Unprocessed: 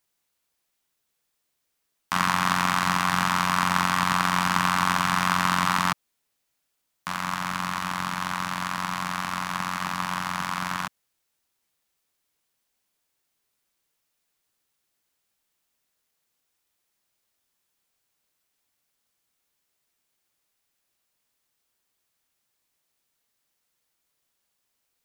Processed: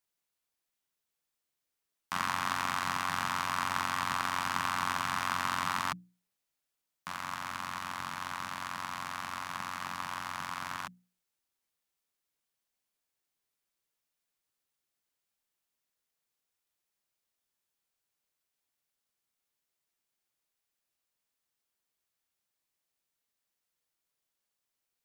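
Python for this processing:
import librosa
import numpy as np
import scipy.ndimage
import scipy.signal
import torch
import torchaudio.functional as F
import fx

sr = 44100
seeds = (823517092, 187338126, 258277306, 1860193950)

y = fx.hum_notches(x, sr, base_hz=60, count=5)
y = F.gain(torch.from_numpy(y), -9.0).numpy()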